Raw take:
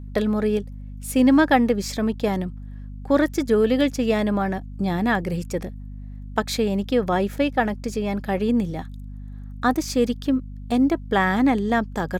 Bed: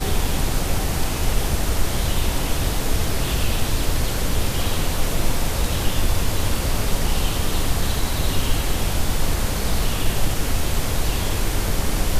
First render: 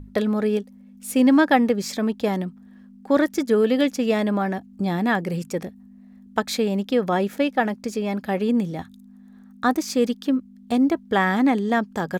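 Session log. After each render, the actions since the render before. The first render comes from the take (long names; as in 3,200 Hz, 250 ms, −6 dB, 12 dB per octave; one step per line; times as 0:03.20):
mains-hum notches 50/100/150 Hz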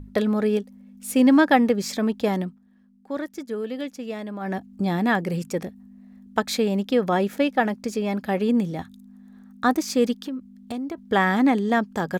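0:02.44–0:04.55: duck −11 dB, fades 0.15 s
0:10.19–0:10.98: downward compressor 10 to 1, threshold −27 dBFS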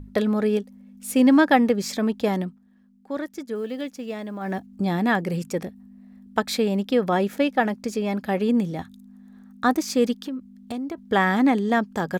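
0:03.55–0:04.67: one scale factor per block 7 bits
0:05.62–0:07.14: notch filter 6,500 Hz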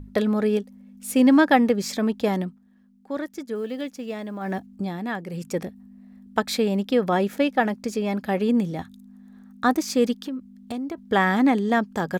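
0:04.69–0:05.54: duck −8 dB, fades 0.24 s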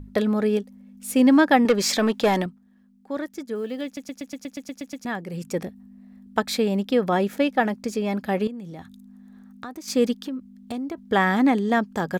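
0:01.65–0:02.46: mid-hump overdrive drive 16 dB, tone 7,700 Hz, clips at −9 dBFS
0:03.85: stutter in place 0.12 s, 10 plays
0:08.47–0:09.88: downward compressor, threshold −34 dBFS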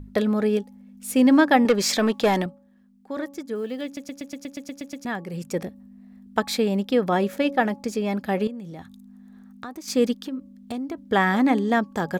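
hum removal 280.2 Hz, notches 4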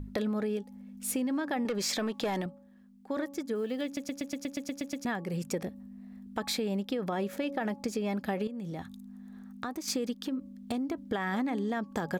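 brickwall limiter −16.5 dBFS, peak gain reduction 10 dB
downward compressor, threshold −29 dBFS, peak gain reduction 9.5 dB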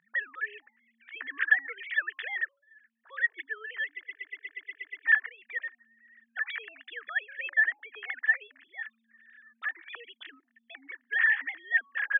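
three sine waves on the formant tracks
high-pass with resonance 1,800 Hz, resonance Q 9.9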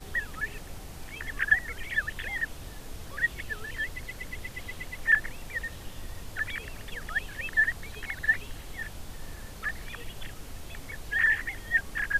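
mix in bed −20.5 dB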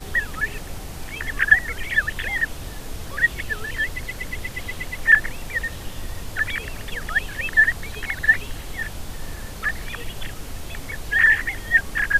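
level +8.5 dB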